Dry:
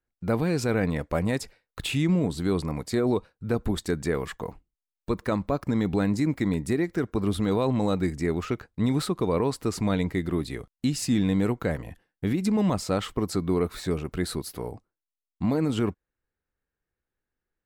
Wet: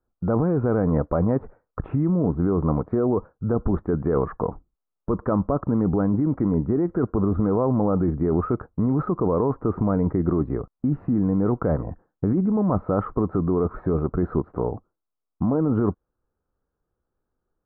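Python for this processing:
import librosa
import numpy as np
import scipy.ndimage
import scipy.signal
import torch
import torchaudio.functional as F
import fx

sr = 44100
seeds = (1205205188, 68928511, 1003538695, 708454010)

p1 = scipy.signal.sosfilt(scipy.signal.ellip(4, 1.0, 80, 1300.0, 'lowpass', fs=sr, output='sos'), x)
p2 = fx.over_compress(p1, sr, threshold_db=-28.0, ratio=-0.5)
y = p1 + (p2 * librosa.db_to_amplitude(1.5))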